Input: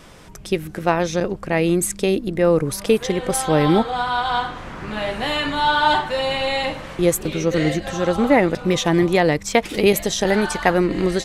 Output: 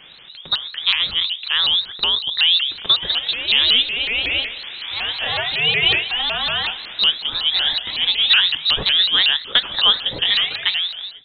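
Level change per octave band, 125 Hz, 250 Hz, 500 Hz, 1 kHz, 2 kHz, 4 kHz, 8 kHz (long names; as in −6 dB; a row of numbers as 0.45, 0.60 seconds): −15.0 dB, −22.0 dB, −17.5 dB, −10.0 dB, +3.0 dB, +15.0 dB, below −35 dB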